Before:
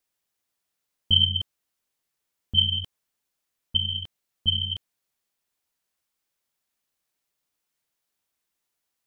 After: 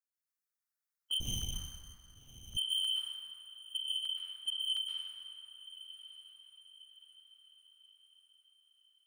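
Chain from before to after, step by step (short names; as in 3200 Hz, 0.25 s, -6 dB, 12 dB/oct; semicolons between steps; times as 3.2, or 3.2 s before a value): per-bin expansion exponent 1.5; resonant high-pass 1300 Hz, resonance Q 2.5; soft clip -23 dBFS, distortion -6 dB; diffused feedback echo 1.226 s, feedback 43%, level -14 dB; reverb RT60 2.8 s, pre-delay 0.113 s, DRR -6 dB; 1.2–2.57 running maximum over 9 samples; gain -7 dB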